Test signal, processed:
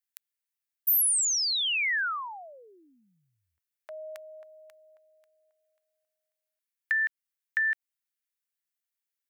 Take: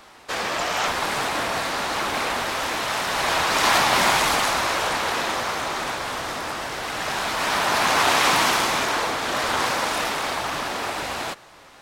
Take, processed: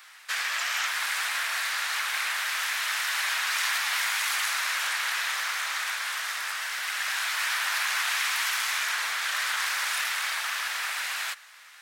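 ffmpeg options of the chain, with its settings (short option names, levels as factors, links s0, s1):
-af "highpass=f=1700:t=q:w=1.8,acompressor=threshold=0.0794:ratio=6,highshelf=f=8000:g=10,volume=0.668"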